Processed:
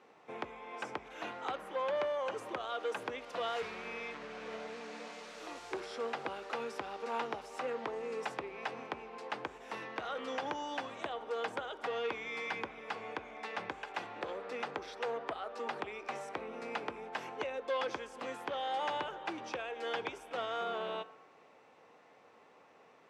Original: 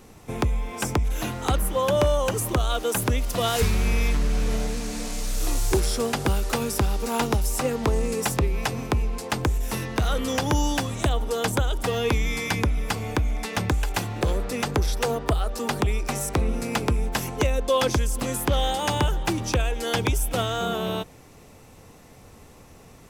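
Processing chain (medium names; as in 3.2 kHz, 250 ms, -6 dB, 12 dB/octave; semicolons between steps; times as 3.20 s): peak limiter -16.5 dBFS, peak gain reduction 3.5 dB; band-pass 490–2600 Hz; on a send at -14 dB: reverberation RT60 1.2 s, pre-delay 3 ms; on the sum: transformer saturation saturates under 1.1 kHz; trim -6.5 dB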